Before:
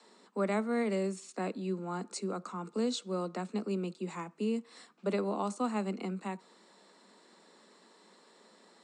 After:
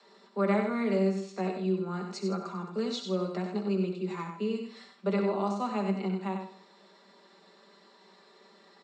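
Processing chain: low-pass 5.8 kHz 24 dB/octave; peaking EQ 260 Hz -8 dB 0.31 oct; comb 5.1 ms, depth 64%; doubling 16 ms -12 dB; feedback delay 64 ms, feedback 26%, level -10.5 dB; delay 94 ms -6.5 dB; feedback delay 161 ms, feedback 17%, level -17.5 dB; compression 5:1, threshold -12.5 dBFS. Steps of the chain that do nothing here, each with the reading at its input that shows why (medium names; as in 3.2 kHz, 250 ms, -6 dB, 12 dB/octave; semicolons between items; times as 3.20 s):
compression, threshold -12.5 dBFS: peak at its input -16.0 dBFS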